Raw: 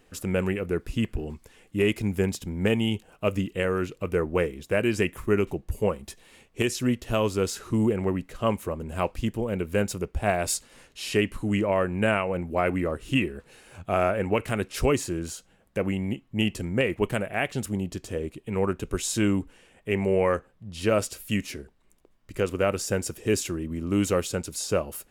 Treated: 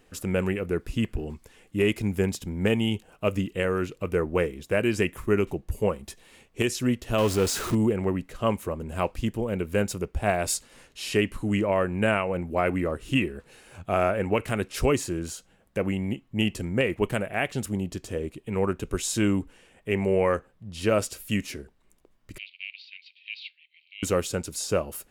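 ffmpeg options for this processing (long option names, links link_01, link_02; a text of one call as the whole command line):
ffmpeg -i in.wav -filter_complex "[0:a]asettb=1/sr,asplit=3[link_01][link_02][link_03];[link_01]atrim=end=7.184[link_04];[link_02]atrim=start=7.18:end=7.75,asetpts=PTS-STARTPTS,afade=type=in:duration=0.004:curve=qsin,afade=type=out:start_time=0.566:duration=0.004:curve=qsin,aeval=exprs='val(0)+0.5*0.0398*sgn(val(0))':channel_layout=same[link_05];[link_03]atrim=start=7.746[link_06];[link_04][link_05]acrossfade=duration=0.004:curve1=hsin:curve2=qsin[link_07];[link_07][link_06]acrossfade=duration=0.004:curve1=qsin:curve2=hsin,asettb=1/sr,asplit=3[link_08][link_09][link_10];[link_08]atrim=end=22.384[link_11];[link_09]atrim=start=22.38:end=24.03,asetpts=PTS-STARTPTS,afade=type=in:duration=0.004:curve=qsin,afade=type=out:start_time=1.646:duration=0.004:curve=qsin,asuperpass=centerf=3100:order=12:qfactor=1.4[link_12];[link_10]atrim=start=24.026[link_13];[link_11][link_12]acrossfade=duration=0.004:curve1=hsin:curve2=qsin[link_14];[link_14][link_13]acrossfade=duration=0.004:curve1=qsin:curve2=hsin" out.wav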